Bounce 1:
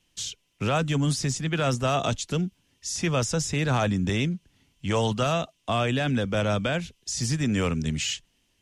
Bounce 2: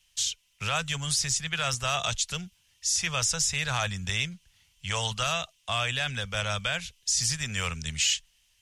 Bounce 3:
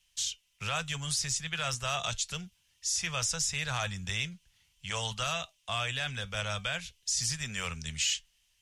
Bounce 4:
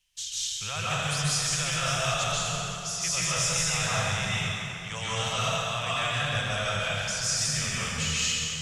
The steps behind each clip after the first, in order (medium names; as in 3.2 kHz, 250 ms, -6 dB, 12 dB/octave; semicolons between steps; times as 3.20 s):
amplifier tone stack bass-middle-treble 10-0-10; trim +6 dB
flange 0.4 Hz, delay 5 ms, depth 1.5 ms, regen -79%
plate-style reverb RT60 3.3 s, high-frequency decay 0.65×, pre-delay 120 ms, DRR -9 dB; trim -3 dB